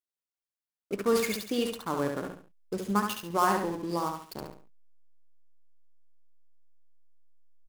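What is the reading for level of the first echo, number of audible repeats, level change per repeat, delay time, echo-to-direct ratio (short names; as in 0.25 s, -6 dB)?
-5.0 dB, 3, -9.5 dB, 70 ms, -4.5 dB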